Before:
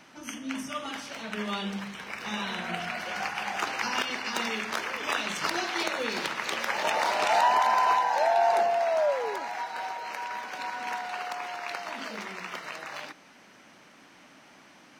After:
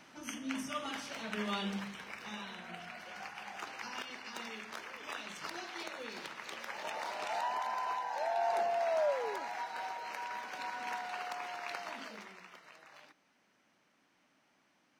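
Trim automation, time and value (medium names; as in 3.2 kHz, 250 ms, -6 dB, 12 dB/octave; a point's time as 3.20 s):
1.78 s -4 dB
2.56 s -13.5 dB
7.95 s -13.5 dB
8.91 s -6 dB
11.87 s -6 dB
12.58 s -18 dB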